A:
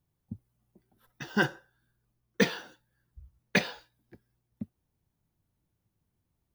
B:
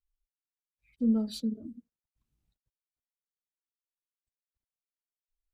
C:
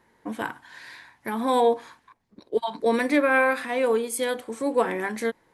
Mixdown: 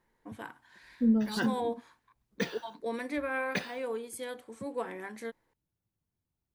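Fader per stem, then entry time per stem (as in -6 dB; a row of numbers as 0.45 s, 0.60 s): -8.0 dB, +1.0 dB, -13.0 dB; 0.00 s, 0.00 s, 0.00 s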